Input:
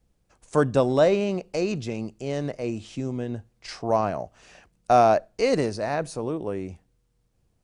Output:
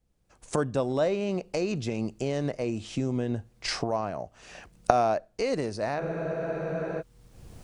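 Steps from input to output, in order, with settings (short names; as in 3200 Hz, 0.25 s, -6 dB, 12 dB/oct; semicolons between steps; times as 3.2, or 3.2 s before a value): recorder AGC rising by 24 dB/s; spectral freeze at 6.02, 0.99 s; gain -7 dB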